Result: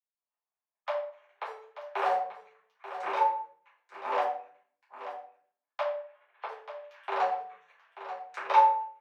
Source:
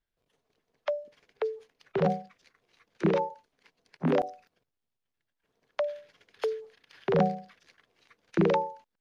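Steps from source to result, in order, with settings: Wiener smoothing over 9 samples; gate with hold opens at -57 dBFS; vocal rider within 3 dB 2 s; 1.45–2.12 sample leveller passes 1; 7.24–8.49 compressor 6:1, threshold -35 dBFS, peak gain reduction 14 dB; ladder high-pass 760 Hz, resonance 55%; 5.82–6.49 air absorption 320 m; echo 0.886 s -11.5 dB; shoebox room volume 56 m³, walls mixed, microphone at 1.9 m; gain +4 dB

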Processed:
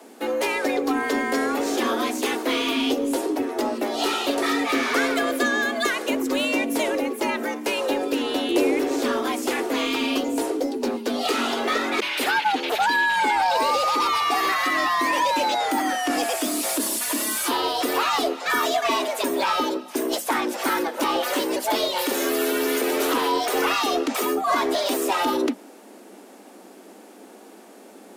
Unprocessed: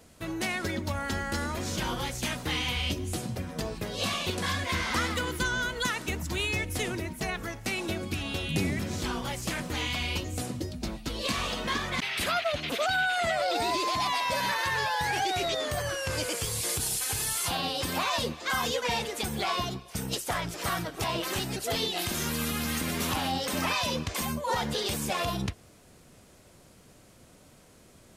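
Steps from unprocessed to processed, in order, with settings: frequency shift +190 Hz; in parallel at -3.5 dB: soft clip -32 dBFS, distortion -9 dB; on the sum: bell 5800 Hz -6.5 dB 2.9 oct; gain +6.5 dB

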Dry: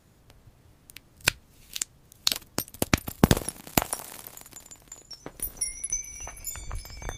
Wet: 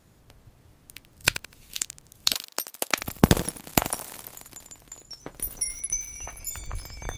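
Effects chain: 2.34–2.99 HPF 570 Hz 12 dB/oct; lo-fi delay 83 ms, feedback 35%, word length 6-bit, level -12 dB; gain +1 dB

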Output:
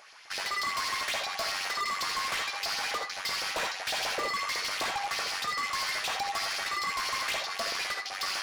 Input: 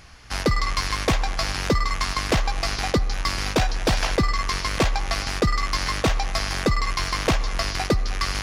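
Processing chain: LFO high-pass saw up 7.9 Hz 520–4300 Hz; non-linear reverb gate 0.1 s rising, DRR 4 dB; overloaded stage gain 22.5 dB; gain -5.5 dB

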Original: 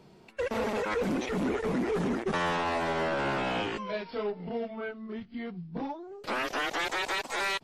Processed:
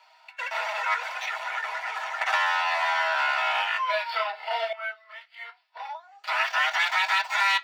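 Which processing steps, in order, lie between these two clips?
median filter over 5 samples; steep high-pass 750 Hz 48 dB/oct; reverb RT60 0.10 s, pre-delay 3 ms, DRR 3 dB; 2.21–4.73 three-band squash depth 100%

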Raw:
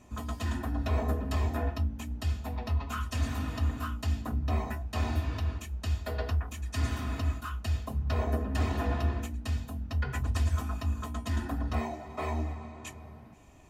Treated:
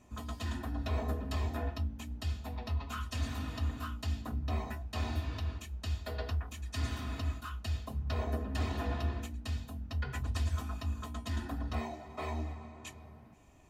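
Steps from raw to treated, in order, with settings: dynamic EQ 3900 Hz, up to +5 dB, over -60 dBFS, Q 1.5; gain -5 dB

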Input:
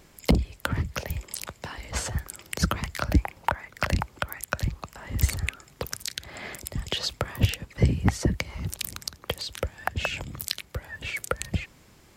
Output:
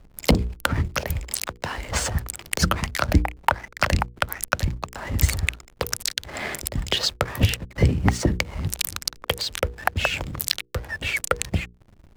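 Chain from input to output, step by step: bell 140 Hz -2.5 dB 1.9 oct; in parallel at +1.5 dB: compressor 10:1, threshold -38 dBFS, peak gain reduction 22 dB; on the sum: backlash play -36 dBFS; notches 60/120/180/240/300/360/420/480 Hz; gain +4.5 dB

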